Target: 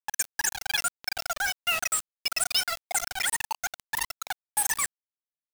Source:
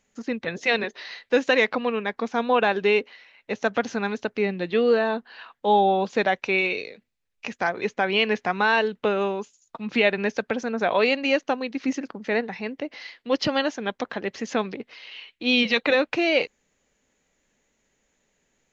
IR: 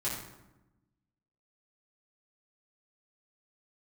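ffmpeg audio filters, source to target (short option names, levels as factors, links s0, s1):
-filter_complex "[0:a]crystalizer=i=5.5:c=0,asplit=2[s0][s1];[s1]aecho=0:1:141|282|423|564|705|846:0.316|0.161|0.0823|0.0419|0.0214|0.0109[s2];[s0][s2]amix=inputs=2:normalize=0,asetrate=149058,aresample=44100,afftfilt=real='re*gte(hypot(re,im),0.224)':imag='im*gte(hypot(re,im),0.224)':win_size=1024:overlap=0.75,acompressor=threshold=0.0251:ratio=2,equalizer=f=125:t=o:w=1:g=-9,equalizer=f=250:t=o:w=1:g=7,equalizer=f=2000:t=o:w=1:g=-3,equalizer=f=4000:t=o:w=1:g=6,acrusher=bits=4:mix=0:aa=0.000001"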